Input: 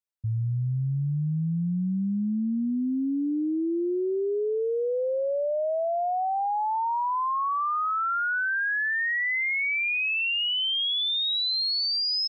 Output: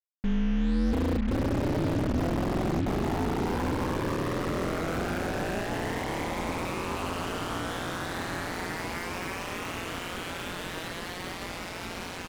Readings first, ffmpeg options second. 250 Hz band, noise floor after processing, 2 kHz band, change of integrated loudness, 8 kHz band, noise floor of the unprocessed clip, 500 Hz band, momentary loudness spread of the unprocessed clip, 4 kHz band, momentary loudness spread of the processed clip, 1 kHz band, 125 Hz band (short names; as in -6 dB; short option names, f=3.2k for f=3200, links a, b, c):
-0.5 dB, -38 dBFS, -8.5 dB, -5.0 dB, n/a, -27 dBFS, -4.0 dB, 4 LU, -13.5 dB, 8 LU, -6.0 dB, -2.5 dB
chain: -filter_complex "[0:a]bandreject=f=50:t=h:w=6,bandreject=f=100:t=h:w=6,bandreject=f=150:t=h:w=6,bandreject=f=200:t=h:w=6,bandreject=f=250:t=h:w=6,asplit=2[a][b];[b]aecho=0:1:670|1072|1313|1458|1545:0.631|0.398|0.251|0.158|0.1[c];[a][c]amix=inputs=2:normalize=0,aeval=exprs='(mod(13.3*val(0)+1,2)-1)/13.3':c=same,highshelf=f=2k:g=-8.5,alimiter=level_in=6.5dB:limit=-24dB:level=0:latency=1:release=474,volume=-6.5dB,equalizer=f=170:w=0.71:g=11.5,asplit=2[d][e];[e]adelay=29,volume=-14dB[f];[d][f]amix=inputs=2:normalize=0,asoftclip=type=hard:threshold=-25.5dB,aeval=exprs='val(0)*sin(2*PI*88*n/s)':c=same,lowpass=2.9k,acrusher=bits=6:mix=0:aa=0.5,volume=5.5dB"